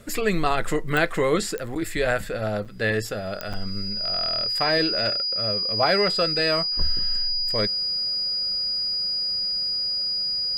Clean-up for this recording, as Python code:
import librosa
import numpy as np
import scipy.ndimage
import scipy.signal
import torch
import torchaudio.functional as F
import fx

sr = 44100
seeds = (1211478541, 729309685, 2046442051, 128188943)

y = fx.fix_declick_ar(x, sr, threshold=10.0)
y = fx.notch(y, sr, hz=4900.0, q=30.0)
y = fx.fix_interpolate(y, sr, at_s=(1.75, 2.65, 3.53), length_ms=6.2)